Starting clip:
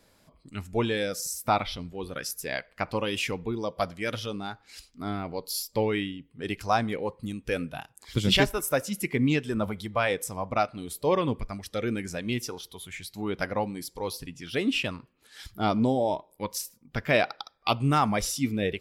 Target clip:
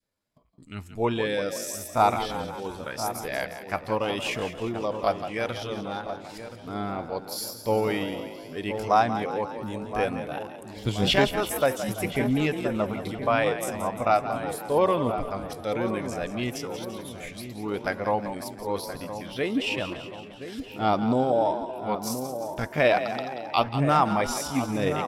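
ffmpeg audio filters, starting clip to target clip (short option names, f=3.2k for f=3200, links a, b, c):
-filter_complex "[0:a]agate=range=-19dB:threshold=-57dB:ratio=16:detection=peak,asplit=2[a][b];[b]asplit=7[c][d][e][f][g][h][i];[c]adelay=130,afreqshift=36,volume=-11dB[j];[d]adelay=260,afreqshift=72,volume=-15.3dB[k];[e]adelay=390,afreqshift=108,volume=-19.6dB[l];[f]adelay=520,afreqshift=144,volume=-23.9dB[m];[g]adelay=650,afreqshift=180,volume=-28.2dB[n];[h]adelay=780,afreqshift=216,volume=-32.5dB[o];[i]adelay=910,afreqshift=252,volume=-36.8dB[p];[j][k][l][m][n][o][p]amix=inputs=7:normalize=0[q];[a][q]amix=inputs=2:normalize=0,atempo=0.75,asplit=2[r][s];[s]adelay=1024,lowpass=f=1.1k:p=1,volume=-8.5dB,asplit=2[t][u];[u]adelay=1024,lowpass=f=1.1k:p=1,volume=0.53,asplit=2[v][w];[w]adelay=1024,lowpass=f=1.1k:p=1,volume=0.53,asplit=2[x][y];[y]adelay=1024,lowpass=f=1.1k:p=1,volume=0.53,asplit=2[z][aa];[aa]adelay=1024,lowpass=f=1.1k:p=1,volume=0.53,asplit=2[ab][ac];[ac]adelay=1024,lowpass=f=1.1k:p=1,volume=0.53[ad];[t][v][x][z][ab][ad]amix=inputs=6:normalize=0[ae];[r][ae]amix=inputs=2:normalize=0,adynamicequalizer=threshold=0.0126:dfrequency=780:dqfactor=0.74:tfrequency=780:tqfactor=0.74:attack=5:release=100:ratio=0.375:range=3:mode=boostabove:tftype=bell,volume=-2dB"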